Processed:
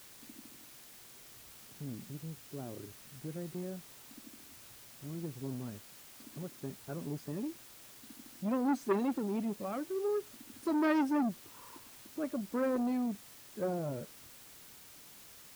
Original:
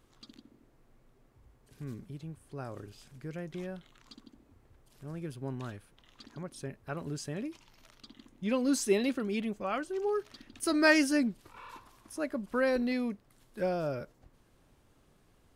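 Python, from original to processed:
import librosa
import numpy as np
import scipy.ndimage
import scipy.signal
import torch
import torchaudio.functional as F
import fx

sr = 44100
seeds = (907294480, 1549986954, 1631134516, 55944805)

y = fx.spec_quant(x, sr, step_db=15)
y = scipy.signal.sosfilt(scipy.signal.butter(2, 200.0, 'highpass', fs=sr, output='sos'), y)
y = fx.tilt_eq(y, sr, slope=-4.5)
y = fx.quant_dither(y, sr, seeds[0], bits=8, dither='triangular')
y = fx.transformer_sat(y, sr, knee_hz=930.0)
y = y * librosa.db_to_amplitude(-6.5)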